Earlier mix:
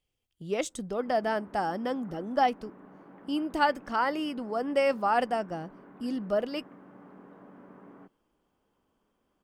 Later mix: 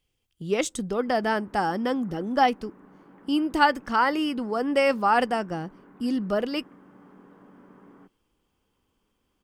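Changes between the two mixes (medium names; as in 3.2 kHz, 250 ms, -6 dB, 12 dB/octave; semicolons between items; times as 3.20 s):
speech +6.5 dB; master: add peaking EQ 640 Hz -6.5 dB 0.47 oct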